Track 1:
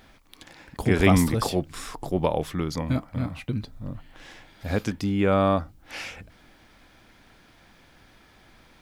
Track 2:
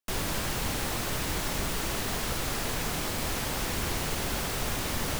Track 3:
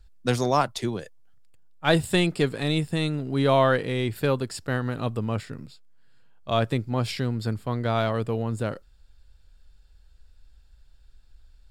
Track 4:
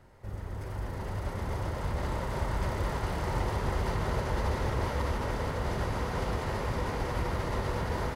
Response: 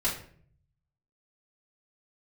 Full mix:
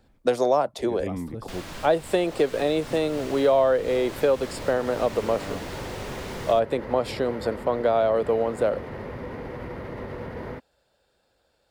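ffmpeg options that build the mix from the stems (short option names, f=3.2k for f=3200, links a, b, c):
-filter_complex "[0:a]tiltshelf=f=750:g=8,volume=-12dB[a];[1:a]acrossover=split=7400[b][c];[c]acompressor=threshold=-48dB:ratio=4:attack=1:release=60[d];[b][d]amix=inputs=2:normalize=0,adelay=1400,volume=-5.5dB[e];[2:a]highpass=190,equalizer=f=570:t=o:w=1.3:g=15,volume=-0.5dB,asplit=2[f][g];[3:a]equalizer=f=125:t=o:w=1:g=6,equalizer=f=250:t=o:w=1:g=10,equalizer=f=500:t=o:w=1:g=8,equalizer=f=2k:t=o:w=1:g=7,equalizer=f=8k:t=o:w=1:g=-9,adelay=2450,volume=-9.5dB[h];[g]apad=whole_len=388797[i];[a][i]sidechaincompress=threshold=-25dB:ratio=8:attack=16:release=338[j];[j][e][f][h]amix=inputs=4:normalize=0,equalizer=f=5.8k:t=o:w=0.77:g=-2,acrossover=split=270|1100[k][l][m];[k]acompressor=threshold=-36dB:ratio=4[n];[l]acompressor=threshold=-20dB:ratio=4[o];[m]acompressor=threshold=-33dB:ratio=4[p];[n][o][p]amix=inputs=3:normalize=0"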